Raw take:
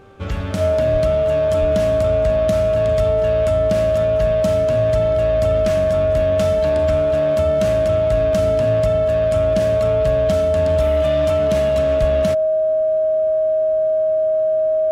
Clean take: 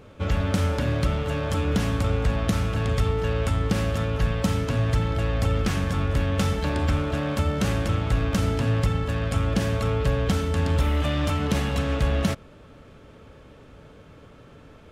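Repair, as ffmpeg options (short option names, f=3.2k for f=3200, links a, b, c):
-filter_complex "[0:a]bandreject=f=391:t=h:w=4,bandreject=f=782:t=h:w=4,bandreject=f=1.173k:t=h:w=4,bandreject=f=1.564k:t=h:w=4,bandreject=f=630:w=30,asplit=3[a][b][c];[a]afade=t=out:st=0.92:d=0.02[d];[b]highpass=f=140:w=0.5412,highpass=f=140:w=1.3066,afade=t=in:st=0.92:d=0.02,afade=t=out:st=1.04:d=0.02[e];[c]afade=t=in:st=1.04:d=0.02[f];[d][e][f]amix=inputs=3:normalize=0,asplit=3[g][h][i];[g]afade=t=out:st=1.6:d=0.02[j];[h]highpass=f=140:w=0.5412,highpass=f=140:w=1.3066,afade=t=in:st=1.6:d=0.02,afade=t=out:st=1.72:d=0.02[k];[i]afade=t=in:st=1.72:d=0.02[l];[j][k][l]amix=inputs=3:normalize=0,asplit=3[m][n][o];[m]afade=t=out:st=12:d=0.02[p];[n]highpass=f=140:w=0.5412,highpass=f=140:w=1.3066,afade=t=in:st=12:d=0.02,afade=t=out:st=12.12:d=0.02[q];[o]afade=t=in:st=12.12:d=0.02[r];[p][q][r]amix=inputs=3:normalize=0"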